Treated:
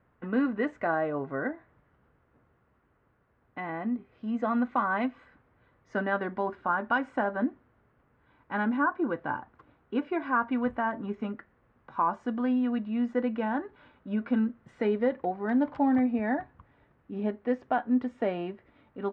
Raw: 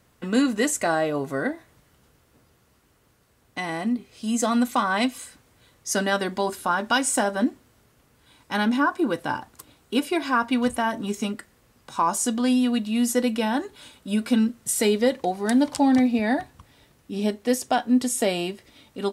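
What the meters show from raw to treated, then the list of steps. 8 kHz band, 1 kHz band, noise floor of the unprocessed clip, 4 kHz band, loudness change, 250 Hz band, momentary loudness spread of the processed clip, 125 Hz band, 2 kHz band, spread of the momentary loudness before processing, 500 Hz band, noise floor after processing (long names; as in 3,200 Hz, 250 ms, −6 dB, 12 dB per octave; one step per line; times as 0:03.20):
below −40 dB, −4.5 dB, −62 dBFS, −20.5 dB, −6.0 dB, −6.0 dB, 10 LU, −6.0 dB, −5.0 dB, 10 LU, −5.5 dB, −69 dBFS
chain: transistor ladder low-pass 2,100 Hz, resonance 25%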